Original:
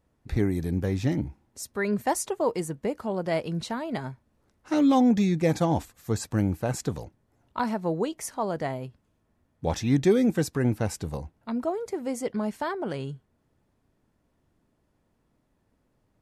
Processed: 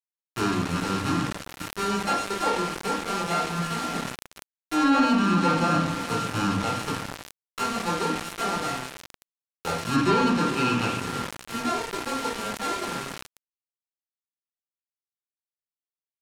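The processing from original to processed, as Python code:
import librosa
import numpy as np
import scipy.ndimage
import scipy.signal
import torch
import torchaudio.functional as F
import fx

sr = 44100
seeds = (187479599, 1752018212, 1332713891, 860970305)

y = np.r_[np.sort(x[:len(x) // 32 * 32].reshape(-1, 32), axis=1).ravel(), x[len(x) // 32 * 32:]]
y = scipy.signal.sosfilt(scipy.signal.bessel(6, 150.0, 'highpass', norm='mag', fs=sr, output='sos'), y)
y = fx.echo_diffused(y, sr, ms=461, feedback_pct=47, wet_db=-10.5)
y = fx.room_shoebox(y, sr, seeds[0], volume_m3=500.0, walls='furnished', distance_m=4.0)
y = np.where(np.abs(y) >= 10.0 ** (-22.5 / 20.0), y, 0.0)
y = fx.peak_eq(y, sr, hz=2600.0, db=10.0, octaves=0.24, at=(10.56, 11.0))
y = 10.0 ** (-7.0 / 20.0) * np.tanh(y / 10.0 ** (-7.0 / 20.0))
y = fx.env_lowpass_down(y, sr, base_hz=2700.0, full_db=-8.0)
y = fx.sustainer(y, sr, db_per_s=89.0)
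y = y * 10.0 ** (-5.5 / 20.0)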